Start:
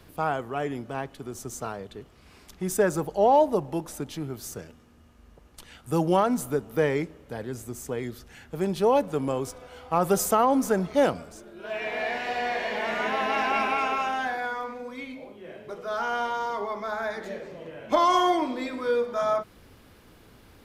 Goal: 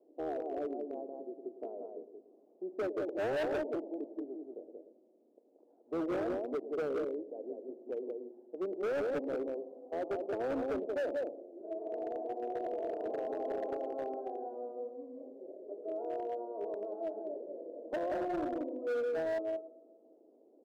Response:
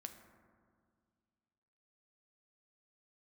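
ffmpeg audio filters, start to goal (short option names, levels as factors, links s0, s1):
-filter_complex "[0:a]alimiter=limit=0.211:level=0:latency=1:release=400,asplit=2[s0][s1];[s1]asetrate=22050,aresample=44100,atempo=2,volume=0.355[s2];[s0][s2]amix=inputs=2:normalize=0,asuperpass=centerf=440:order=8:qfactor=1.1,aecho=1:1:181:0.631,asplit=2[s3][s4];[1:a]atrim=start_sample=2205,adelay=107[s5];[s4][s5]afir=irnorm=-1:irlink=0,volume=0.398[s6];[s3][s6]amix=inputs=2:normalize=0,asoftclip=type=hard:threshold=0.0562,volume=0.501"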